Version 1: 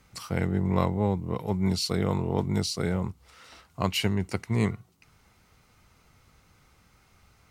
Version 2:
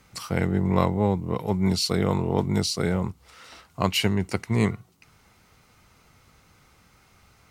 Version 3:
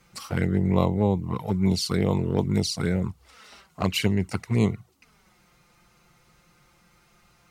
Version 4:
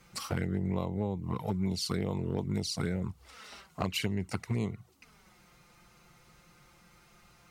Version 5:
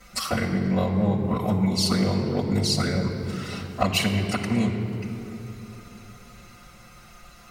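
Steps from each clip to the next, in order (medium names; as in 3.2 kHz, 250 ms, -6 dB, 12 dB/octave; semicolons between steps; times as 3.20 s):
bass shelf 80 Hz -5.5 dB; trim +4 dB
touch-sensitive flanger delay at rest 6 ms, full sweep at -18 dBFS; trim +1 dB
compression 5:1, threshold -29 dBFS, peak gain reduction 13 dB
reverberation RT60 3.0 s, pre-delay 4 ms, DRR -7 dB; trim +3.5 dB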